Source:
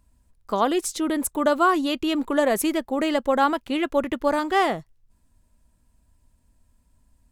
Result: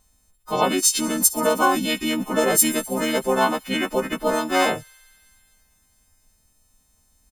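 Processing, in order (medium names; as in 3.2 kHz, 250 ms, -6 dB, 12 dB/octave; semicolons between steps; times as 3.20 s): partials quantised in pitch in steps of 3 st; feedback echo behind a high-pass 64 ms, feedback 85%, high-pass 4.5 kHz, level -18 dB; harmony voices -12 st -18 dB, -5 st -1 dB; trim -2.5 dB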